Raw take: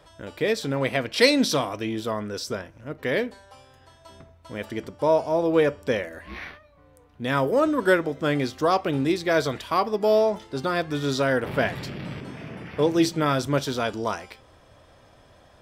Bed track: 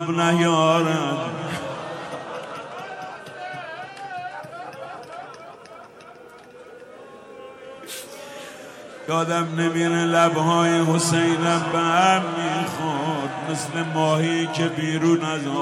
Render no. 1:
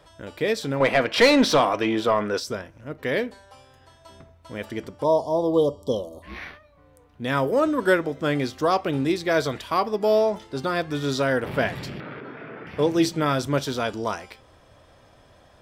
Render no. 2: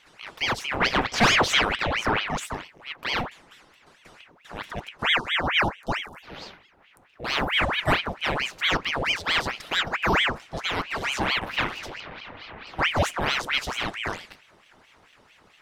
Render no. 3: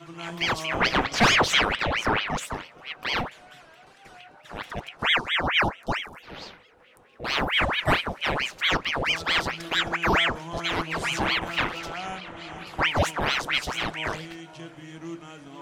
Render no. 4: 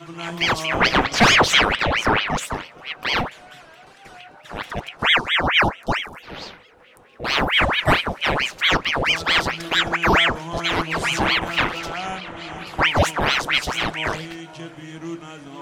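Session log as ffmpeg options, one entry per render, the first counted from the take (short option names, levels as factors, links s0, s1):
-filter_complex "[0:a]asettb=1/sr,asplit=3[s0][s1][s2];[s0]atrim=end=0.804[s3];[s1]atrim=start=0.8:end=2.4,asetpts=PTS-STARTPTS,afade=t=in:d=0.004:c=qsin,afade=t=out:st=1.596:d=0.004:c=qsin,asplit=2[s4][s5];[s5]highpass=f=720:p=1,volume=8.91,asoftclip=type=tanh:threshold=0.531[s6];[s4][s6]amix=inputs=2:normalize=0,lowpass=f=1600:p=1,volume=0.501[s7];[s2]atrim=start=2.396[s8];[s3][s7]acrossfade=d=0.004:c1=hsin:c2=qsin[s9];[s9][s8]acrossfade=d=0.004:c1=qsin:c2=hsin,asplit=3[s10][s11][s12];[s10]afade=t=out:st=5.03:d=0.02[s13];[s11]asuperstop=centerf=1900:order=20:qfactor=1,afade=t=in:st=5.03:d=0.02,afade=t=out:st=6.22:d=0.02[s14];[s12]afade=t=in:st=6.22:d=0.02[s15];[s13][s14][s15]amix=inputs=3:normalize=0,asettb=1/sr,asplit=3[s16][s17][s18];[s16]atrim=end=12.004[s19];[s17]atrim=start=12:end=12.67,asetpts=PTS-STARTPTS,afade=t=in:d=0.004:c=qsin,afade=t=out:st=0.666:d=0.004:c=qsin,highpass=190,equalizer=f=190:t=q:w=4:g=-8,equalizer=f=440:t=q:w=4:g=5,equalizer=f=1400:t=q:w=4:g=10,equalizer=f=2900:t=q:w=4:g=-6,lowpass=f=3300:w=0.5412,lowpass=f=3300:w=1.3066[s20];[s18]atrim=start=12.666[s21];[s19][s20]acrossfade=d=0.004:c1=hsin:c2=qsin[s22];[s22][s21]acrossfade=d=0.004:c1=qsin:c2=hsin"
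-af "aeval=exprs='val(0)*sin(2*PI*1500*n/s+1500*0.85/4.5*sin(2*PI*4.5*n/s))':c=same"
-filter_complex "[1:a]volume=0.112[s0];[0:a][s0]amix=inputs=2:normalize=0"
-af "volume=1.88,alimiter=limit=0.708:level=0:latency=1"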